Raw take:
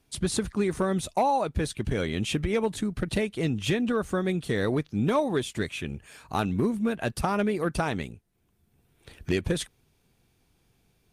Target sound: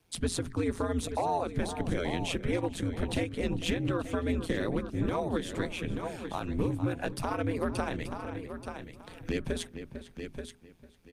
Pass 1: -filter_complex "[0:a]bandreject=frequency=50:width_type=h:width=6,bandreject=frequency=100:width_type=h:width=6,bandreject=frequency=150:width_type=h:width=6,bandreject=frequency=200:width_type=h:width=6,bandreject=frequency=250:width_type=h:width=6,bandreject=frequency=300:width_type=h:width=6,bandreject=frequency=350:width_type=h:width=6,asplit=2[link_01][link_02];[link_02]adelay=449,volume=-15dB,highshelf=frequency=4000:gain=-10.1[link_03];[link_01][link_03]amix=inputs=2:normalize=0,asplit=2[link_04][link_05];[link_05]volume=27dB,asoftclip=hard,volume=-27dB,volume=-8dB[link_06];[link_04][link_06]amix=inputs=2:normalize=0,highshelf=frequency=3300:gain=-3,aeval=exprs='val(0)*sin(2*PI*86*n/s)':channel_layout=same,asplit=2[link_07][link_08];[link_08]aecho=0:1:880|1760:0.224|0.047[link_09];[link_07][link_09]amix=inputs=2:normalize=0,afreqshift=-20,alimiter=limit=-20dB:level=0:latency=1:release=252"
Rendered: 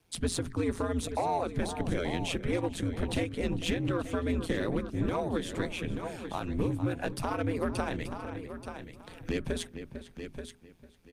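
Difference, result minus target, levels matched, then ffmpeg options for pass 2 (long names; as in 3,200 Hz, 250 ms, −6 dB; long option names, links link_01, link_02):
gain into a clipping stage and back: distortion +25 dB
-filter_complex "[0:a]bandreject=frequency=50:width_type=h:width=6,bandreject=frequency=100:width_type=h:width=6,bandreject=frequency=150:width_type=h:width=6,bandreject=frequency=200:width_type=h:width=6,bandreject=frequency=250:width_type=h:width=6,bandreject=frequency=300:width_type=h:width=6,bandreject=frequency=350:width_type=h:width=6,asplit=2[link_01][link_02];[link_02]adelay=449,volume=-15dB,highshelf=frequency=4000:gain=-10.1[link_03];[link_01][link_03]amix=inputs=2:normalize=0,asplit=2[link_04][link_05];[link_05]volume=17dB,asoftclip=hard,volume=-17dB,volume=-8dB[link_06];[link_04][link_06]amix=inputs=2:normalize=0,highshelf=frequency=3300:gain=-3,aeval=exprs='val(0)*sin(2*PI*86*n/s)':channel_layout=same,asplit=2[link_07][link_08];[link_08]aecho=0:1:880|1760:0.224|0.047[link_09];[link_07][link_09]amix=inputs=2:normalize=0,afreqshift=-20,alimiter=limit=-20dB:level=0:latency=1:release=252"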